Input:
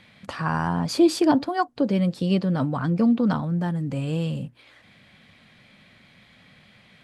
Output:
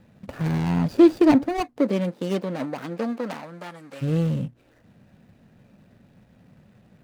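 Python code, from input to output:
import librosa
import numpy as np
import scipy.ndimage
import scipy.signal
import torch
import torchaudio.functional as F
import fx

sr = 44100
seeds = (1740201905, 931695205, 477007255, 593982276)

y = scipy.ndimage.median_filter(x, 41, mode='constant')
y = fx.highpass(y, sr, hz=fx.line((1.76, 250.0), (4.01, 840.0)), slope=12, at=(1.76, 4.01), fade=0.02)
y = y * 10.0 ** (4.0 / 20.0)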